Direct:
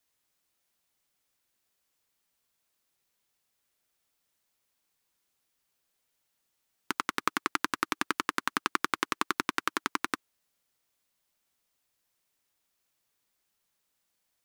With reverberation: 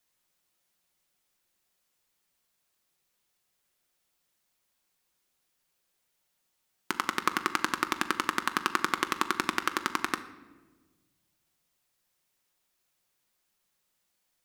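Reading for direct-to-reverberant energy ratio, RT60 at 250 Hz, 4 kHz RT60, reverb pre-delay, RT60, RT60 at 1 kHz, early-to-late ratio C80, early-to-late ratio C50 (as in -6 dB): 8.0 dB, 1.9 s, 0.85 s, 5 ms, 1.3 s, 1.2 s, 15.5 dB, 13.0 dB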